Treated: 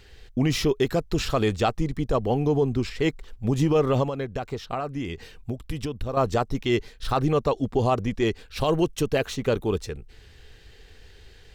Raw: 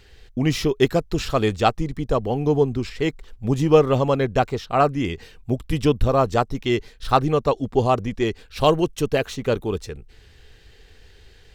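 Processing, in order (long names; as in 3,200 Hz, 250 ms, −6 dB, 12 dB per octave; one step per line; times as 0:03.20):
brickwall limiter −12.5 dBFS, peak gain reduction 10.5 dB
0:04.03–0:06.17: downward compressor 5 to 1, threshold −27 dBFS, peak gain reduction 10 dB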